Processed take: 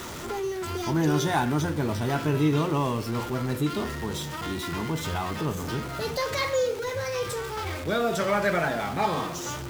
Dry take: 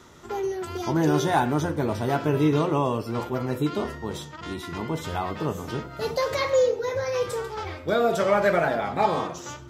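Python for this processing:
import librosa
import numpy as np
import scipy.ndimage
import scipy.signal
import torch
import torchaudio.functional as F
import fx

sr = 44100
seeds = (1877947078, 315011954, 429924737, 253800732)

y = x + 0.5 * 10.0 ** (-33.0 / 20.0) * np.sign(x)
y = fx.dynamic_eq(y, sr, hz=580.0, q=0.8, threshold_db=-34.0, ratio=4.0, max_db=-6)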